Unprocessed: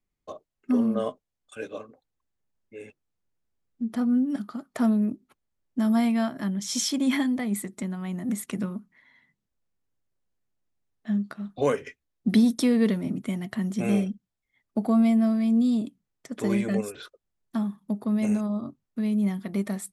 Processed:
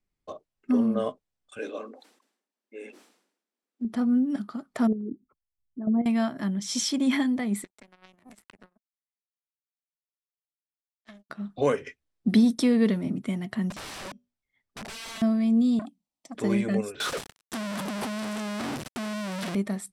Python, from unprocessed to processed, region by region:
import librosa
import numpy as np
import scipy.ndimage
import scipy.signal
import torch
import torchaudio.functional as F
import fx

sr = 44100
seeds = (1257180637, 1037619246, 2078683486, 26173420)

y = fx.chain(x, sr, fx.steep_highpass(hz=220.0, slope=48),
    fx.sustainer(db_per_s=81.0), at=(1.59, 3.85))
y = fx.chain(y, sr, fx.envelope_sharpen(power=3.0),
    fx.lowpass(hz=1700.0, slope=12),
    fx.level_steps(step_db=11), at=(4.87, 6.06))
y = fx.chain(y, sr, fx.highpass(hz=550.0, slope=6),
    fx.power_curve(exponent=3.0),
    fx.band_squash(depth_pct=100), at=(7.64, 11.3))
y = fx.chain(y, sr, fx.lowpass(hz=10000.0, slope=12),
    fx.comb_fb(f0_hz=81.0, decay_s=0.28, harmonics='odd', damping=0.0, mix_pct=40),
    fx.overflow_wrap(gain_db=34.0), at=(13.7, 15.22))
y = fx.chain(y, sr, fx.highpass(hz=160.0, slope=6),
    fx.fixed_phaser(hz=420.0, stages=6),
    fx.transformer_sat(knee_hz=770.0), at=(15.79, 16.35))
y = fx.chain(y, sr, fx.clip_1bit(),
    fx.highpass(hz=230.0, slope=6),
    fx.upward_expand(threshold_db=-49.0, expansion=1.5), at=(17.0, 19.55))
y = scipy.signal.sosfilt(scipy.signal.butter(2, 9400.0, 'lowpass', fs=sr, output='sos'), y)
y = fx.notch(y, sr, hz=6700.0, q=16.0)